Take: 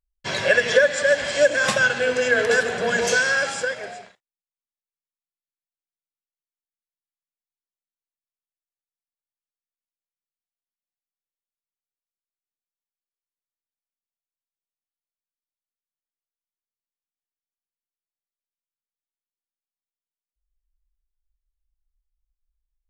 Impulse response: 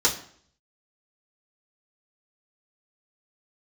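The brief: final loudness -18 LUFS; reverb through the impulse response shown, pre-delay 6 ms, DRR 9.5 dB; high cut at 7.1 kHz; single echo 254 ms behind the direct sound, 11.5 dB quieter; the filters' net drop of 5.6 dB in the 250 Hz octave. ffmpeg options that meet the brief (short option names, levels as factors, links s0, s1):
-filter_complex "[0:a]lowpass=7100,equalizer=f=250:t=o:g=-7,aecho=1:1:254:0.266,asplit=2[s0][s1];[1:a]atrim=start_sample=2205,adelay=6[s2];[s1][s2]afir=irnorm=-1:irlink=0,volume=0.0708[s3];[s0][s3]amix=inputs=2:normalize=0,volume=1.19"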